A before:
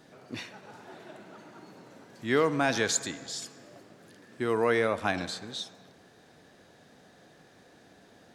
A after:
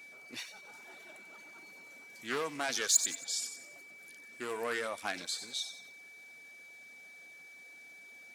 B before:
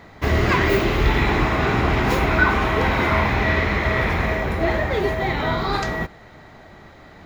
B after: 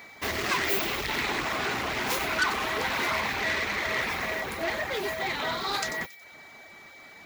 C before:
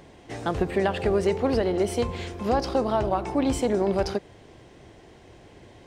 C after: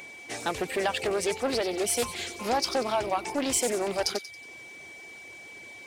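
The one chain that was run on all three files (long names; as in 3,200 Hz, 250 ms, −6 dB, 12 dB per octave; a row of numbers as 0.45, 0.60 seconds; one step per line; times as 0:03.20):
steady tone 2,300 Hz −46 dBFS
soft clipping −15.5 dBFS
RIAA equalisation recording
reverb reduction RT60 0.56 s
parametric band 240 Hz +3 dB 0.21 octaves
delay with a high-pass on its return 92 ms, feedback 41%, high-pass 3,700 Hz, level −8 dB
highs frequency-modulated by the lows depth 0.21 ms
normalise the peak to −12 dBFS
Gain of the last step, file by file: −6.5, −4.5, +0.5 decibels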